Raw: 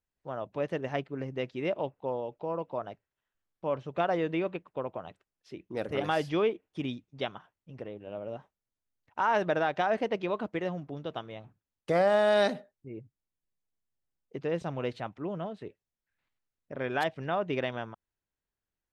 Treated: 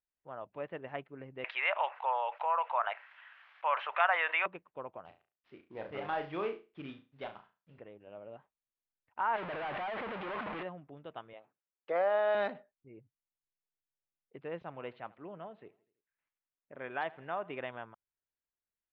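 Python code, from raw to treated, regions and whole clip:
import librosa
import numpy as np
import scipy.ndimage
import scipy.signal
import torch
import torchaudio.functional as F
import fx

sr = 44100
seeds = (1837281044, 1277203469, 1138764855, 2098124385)

y = fx.chain(x, sr, fx.highpass(hz=700.0, slope=24),
    fx.peak_eq(hz=2000.0, db=14.0, octaves=2.7),
    fx.env_flatten(amount_pct=50), at=(1.44, 4.46))
y = fx.chain(y, sr, fx.cvsd(bps=32000),
    fx.room_flutter(wall_m=6.0, rt60_s=0.3), at=(5.05, 7.79))
y = fx.chain(y, sr, fx.clip_1bit(),
    fx.lowpass(hz=3800.0, slope=12),
    fx.low_shelf(hz=110.0, db=-7.5), at=(9.36, 10.63))
y = fx.chain(y, sr, fx.highpass(hz=350.0, slope=12),
    fx.peak_eq(hz=510.0, db=4.5, octaves=0.75), at=(11.33, 12.35))
y = fx.chain(y, sr, fx.low_shelf(hz=86.0, db=-9.5),
    fx.echo_feedback(ms=82, feedback_pct=54, wet_db=-21.5), at=(14.63, 17.6))
y = fx.dynamic_eq(y, sr, hz=1000.0, q=1.2, threshold_db=-39.0, ratio=4.0, max_db=4)
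y = scipy.signal.sosfilt(scipy.signal.butter(4, 2900.0, 'lowpass', fs=sr, output='sos'), y)
y = fx.low_shelf(y, sr, hz=500.0, db=-7.0)
y = F.gain(torch.from_numpy(y), -6.5).numpy()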